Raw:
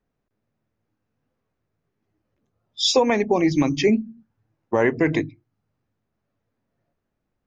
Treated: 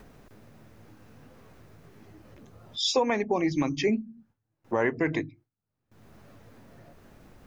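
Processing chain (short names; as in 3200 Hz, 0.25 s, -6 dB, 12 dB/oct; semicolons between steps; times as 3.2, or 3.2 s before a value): dynamic EQ 1300 Hz, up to +4 dB, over -33 dBFS, Q 1; upward compressor, threshold -19 dBFS; gate with hold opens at -41 dBFS; gain -7.5 dB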